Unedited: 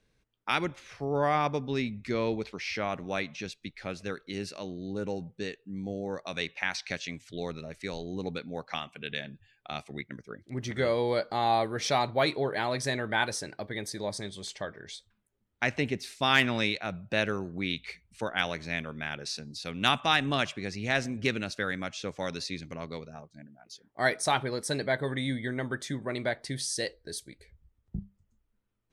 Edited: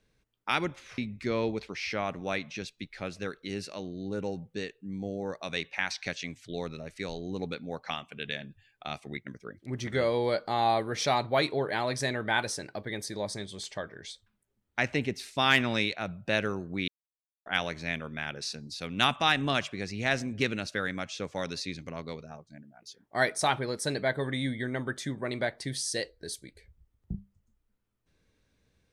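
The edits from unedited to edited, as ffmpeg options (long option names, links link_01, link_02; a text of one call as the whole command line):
ffmpeg -i in.wav -filter_complex "[0:a]asplit=4[link_01][link_02][link_03][link_04];[link_01]atrim=end=0.982[link_05];[link_02]atrim=start=1.818:end=17.72,asetpts=PTS-STARTPTS,afade=type=out:start_time=15.898:duration=0.004:curve=hsin[link_06];[link_03]atrim=start=17.72:end=18.3,asetpts=PTS-STARTPTS,volume=0[link_07];[link_04]atrim=start=18.3,asetpts=PTS-STARTPTS,afade=type=in:duration=0.004:curve=hsin[link_08];[link_06][link_07][link_08]concat=n=3:v=0:a=1[link_09];[link_05][link_09]acrossfade=duration=0.004:curve1=hsin:curve2=hsin" out.wav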